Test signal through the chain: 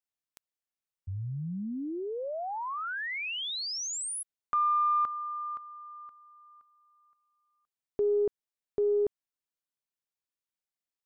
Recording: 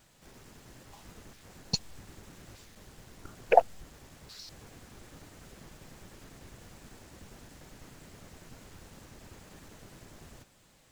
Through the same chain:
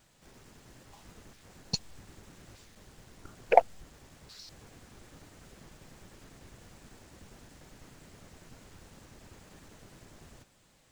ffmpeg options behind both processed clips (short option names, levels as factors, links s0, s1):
-af "aeval=exprs='0.631*(cos(1*acos(clip(val(0)/0.631,-1,1)))-cos(1*PI/2))+0.0794*(cos(3*acos(clip(val(0)/0.631,-1,1)))-cos(3*PI/2))+0.00398*(cos(6*acos(clip(val(0)/0.631,-1,1)))-cos(6*PI/2))':c=same,equalizer=f=12000:w=7:g=-10,volume=1.26"